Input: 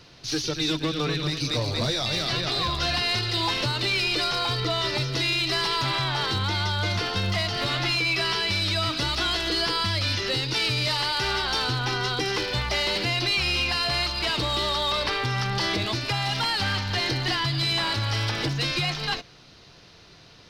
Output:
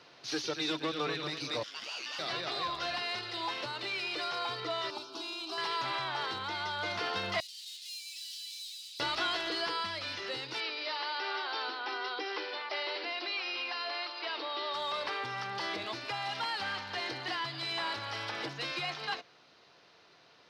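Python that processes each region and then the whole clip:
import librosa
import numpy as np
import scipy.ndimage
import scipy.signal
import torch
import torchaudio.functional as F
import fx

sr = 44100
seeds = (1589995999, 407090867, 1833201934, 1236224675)

y = fx.chain(x, sr, fx.highpass(hz=1100.0, slope=24),
    fx.ring_mod(carrier_hz=920.0), at=(1.63, 2.19))
y = fx.chain(y, sr, fx.highpass(hz=40.0, slope=12),
    fx.fixed_phaser(hz=520.0, stages=6), at=(4.9, 5.58))
y = fx.chain(y, sr, fx.clip_hard(threshold_db=-32.5),
    fx.cheby2_highpass(hz=1100.0, order=4, stop_db=60), at=(7.4, 9.0))
y = fx.chain(y, sr, fx.brickwall_highpass(low_hz=250.0),
    fx.resample_bad(factor=4, down='none', up='filtered'), at=(10.6, 14.74))
y = scipy.signal.sosfilt(scipy.signal.bessel(2, 920.0, 'highpass', norm='mag', fs=sr, output='sos'), y)
y = fx.tilt_eq(y, sr, slope=-4.0)
y = fx.rider(y, sr, range_db=10, speed_s=2.0)
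y = y * librosa.db_to_amplitude(-4.0)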